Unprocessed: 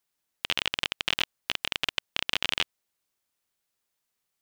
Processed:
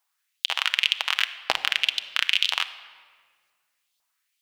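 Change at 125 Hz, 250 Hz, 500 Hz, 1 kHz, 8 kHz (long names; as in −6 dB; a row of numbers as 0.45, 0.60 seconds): below −10 dB, can't be measured, +0.5 dB, +6.0 dB, +3.0 dB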